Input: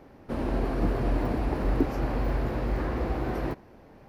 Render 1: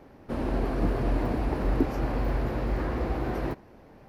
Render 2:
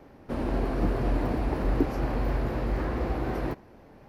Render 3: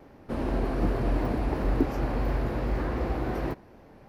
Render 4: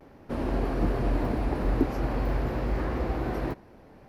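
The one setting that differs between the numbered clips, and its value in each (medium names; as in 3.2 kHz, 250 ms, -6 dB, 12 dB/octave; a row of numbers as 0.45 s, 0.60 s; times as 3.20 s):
vibrato, rate: 9.3 Hz, 4 Hz, 2.7 Hz, 0.47 Hz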